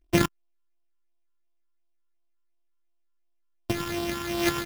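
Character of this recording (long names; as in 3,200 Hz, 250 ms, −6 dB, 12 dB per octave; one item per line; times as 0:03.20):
a buzz of ramps at a fixed pitch in blocks of 128 samples
phaser sweep stages 8, 2.8 Hz, lowest notch 610–1,800 Hz
aliases and images of a low sample rate 8,400 Hz, jitter 0%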